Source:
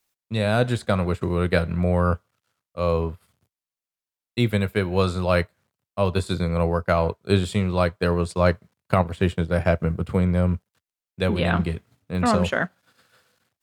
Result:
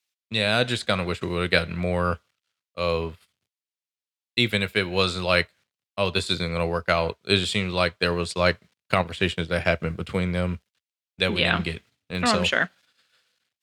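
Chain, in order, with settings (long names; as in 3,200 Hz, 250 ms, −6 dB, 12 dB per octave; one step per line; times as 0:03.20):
meter weighting curve D
noise gate −46 dBFS, range −10 dB
parametric band 68 Hz +6 dB 0.77 octaves
level −2 dB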